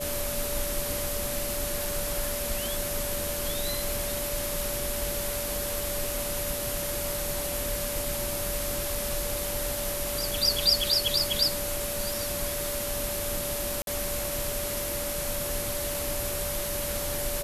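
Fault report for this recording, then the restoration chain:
whistle 580 Hz −34 dBFS
0:13.82–0:13.87: drop-out 52 ms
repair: notch filter 580 Hz, Q 30
repair the gap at 0:13.82, 52 ms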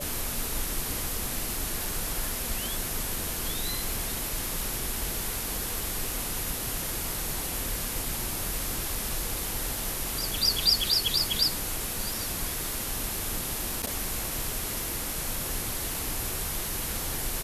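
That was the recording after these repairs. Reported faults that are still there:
none of them is left

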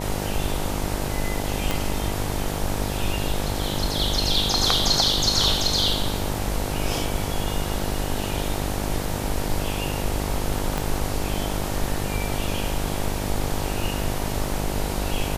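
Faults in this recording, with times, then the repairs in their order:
mains buzz 50 Hz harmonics 19 −29 dBFS
0:01.71: click
0:10.78: click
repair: click removal
hum removal 50 Hz, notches 19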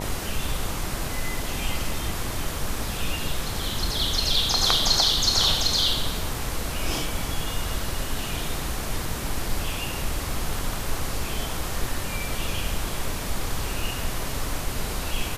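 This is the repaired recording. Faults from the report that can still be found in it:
0:01.71: click
0:10.78: click

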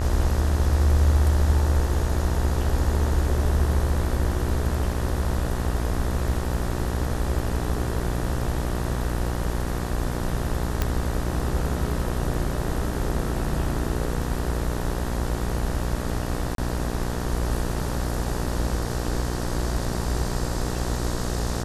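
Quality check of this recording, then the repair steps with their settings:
mains buzz 60 Hz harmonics 32 −28 dBFS
0:10.82: click −8 dBFS
0:16.55–0:16.58: drop-out 32 ms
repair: click removal
hum removal 60 Hz, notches 32
repair the gap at 0:16.55, 32 ms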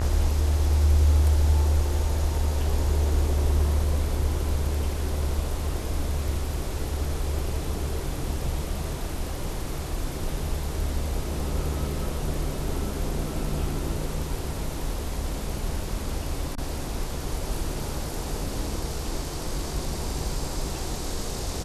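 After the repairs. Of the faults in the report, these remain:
none of them is left

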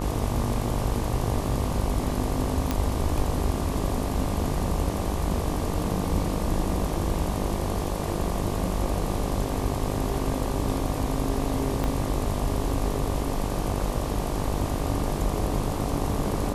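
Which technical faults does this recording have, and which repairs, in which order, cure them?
mains buzz 50 Hz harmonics 24 −31 dBFS
0:02.71: click −10 dBFS
0:11.84: click −15 dBFS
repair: click removal
hum removal 50 Hz, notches 24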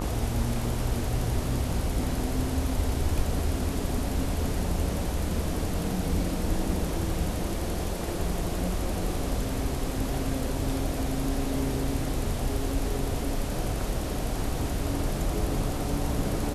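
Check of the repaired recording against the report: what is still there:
0:11.84: click

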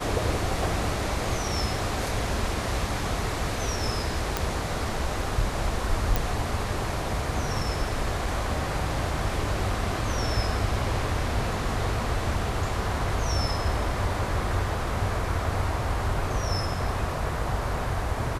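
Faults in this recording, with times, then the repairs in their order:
0:04.37: click
0:06.16: click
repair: click removal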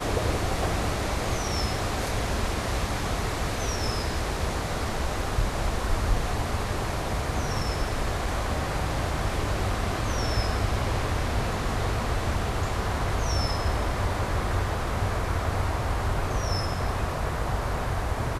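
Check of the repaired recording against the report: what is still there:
0:06.16: click

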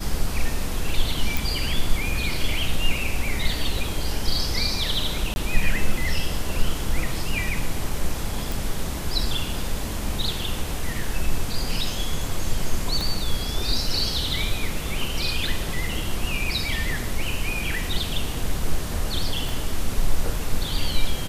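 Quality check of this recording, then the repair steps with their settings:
0:01.37: click
0:05.34–0:05.36: drop-out 21 ms
0:08.52: click
0:13.01: click
0:19.49: click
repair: click removal
repair the gap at 0:05.34, 21 ms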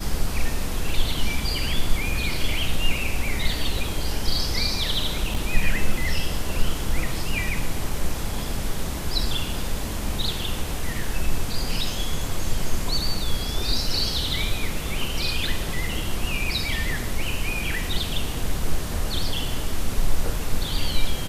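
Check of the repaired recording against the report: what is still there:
0:13.01: click
0:19.49: click

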